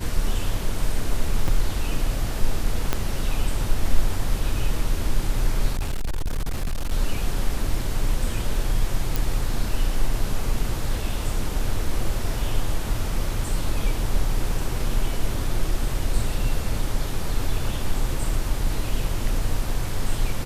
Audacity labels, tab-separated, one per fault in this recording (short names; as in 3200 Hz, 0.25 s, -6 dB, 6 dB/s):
1.480000	1.480000	gap 4.6 ms
2.930000	2.930000	pop -7 dBFS
5.730000	6.930000	clipped -21 dBFS
9.160000	9.160000	pop